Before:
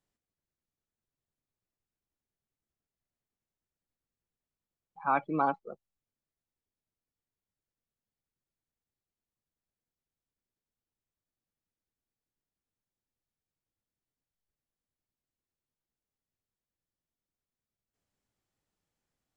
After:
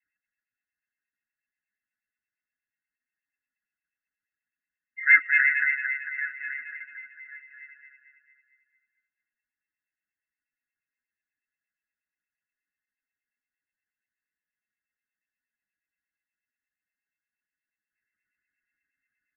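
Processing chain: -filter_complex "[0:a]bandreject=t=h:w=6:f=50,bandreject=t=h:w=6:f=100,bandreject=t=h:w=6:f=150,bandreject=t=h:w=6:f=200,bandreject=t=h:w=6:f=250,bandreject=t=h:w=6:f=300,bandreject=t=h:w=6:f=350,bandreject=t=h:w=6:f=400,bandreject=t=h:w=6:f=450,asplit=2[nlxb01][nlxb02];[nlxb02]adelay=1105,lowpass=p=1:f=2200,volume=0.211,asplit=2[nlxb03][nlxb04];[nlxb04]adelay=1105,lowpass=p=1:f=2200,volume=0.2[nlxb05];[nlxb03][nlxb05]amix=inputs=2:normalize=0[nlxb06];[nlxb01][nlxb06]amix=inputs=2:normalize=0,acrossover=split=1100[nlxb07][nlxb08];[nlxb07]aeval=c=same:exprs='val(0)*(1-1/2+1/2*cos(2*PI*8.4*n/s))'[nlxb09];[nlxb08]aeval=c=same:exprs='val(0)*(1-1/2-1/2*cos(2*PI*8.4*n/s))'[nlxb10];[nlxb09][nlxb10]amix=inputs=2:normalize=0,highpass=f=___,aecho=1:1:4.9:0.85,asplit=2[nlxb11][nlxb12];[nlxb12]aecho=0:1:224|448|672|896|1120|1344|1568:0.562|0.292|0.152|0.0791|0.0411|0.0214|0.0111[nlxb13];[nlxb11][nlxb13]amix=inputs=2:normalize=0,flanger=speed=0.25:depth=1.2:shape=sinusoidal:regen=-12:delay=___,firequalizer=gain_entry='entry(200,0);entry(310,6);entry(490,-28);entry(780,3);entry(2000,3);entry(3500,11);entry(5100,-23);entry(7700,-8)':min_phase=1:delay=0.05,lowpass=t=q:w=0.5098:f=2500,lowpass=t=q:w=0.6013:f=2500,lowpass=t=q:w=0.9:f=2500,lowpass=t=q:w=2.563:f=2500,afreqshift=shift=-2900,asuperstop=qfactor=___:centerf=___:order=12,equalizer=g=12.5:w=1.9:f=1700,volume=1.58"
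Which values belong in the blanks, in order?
230, 8.1, 0.68, 720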